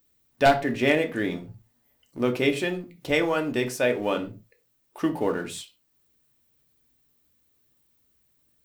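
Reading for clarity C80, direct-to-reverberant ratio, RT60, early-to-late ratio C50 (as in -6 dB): 20.5 dB, 4.5 dB, no single decay rate, 14.5 dB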